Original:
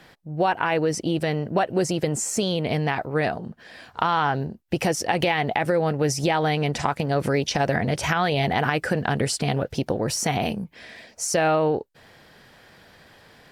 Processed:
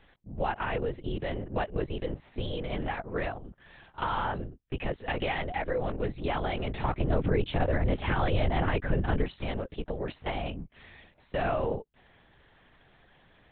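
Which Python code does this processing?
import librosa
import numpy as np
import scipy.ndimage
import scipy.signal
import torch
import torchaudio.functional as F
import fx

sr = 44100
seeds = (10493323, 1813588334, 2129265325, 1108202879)

y = fx.lpc_vocoder(x, sr, seeds[0], excitation='whisper', order=8)
y = fx.low_shelf(y, sr, hz=360.0, db=8.5, at=(6.73, 9.24))
y = F.gain(torch.from_numpy(y), -8.5).numpy()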